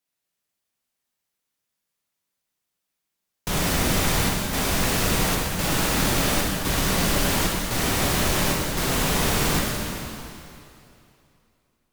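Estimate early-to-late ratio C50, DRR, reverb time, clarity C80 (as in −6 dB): −0.5 dB, −2.5 dB, 2.7 s, 1.0 dB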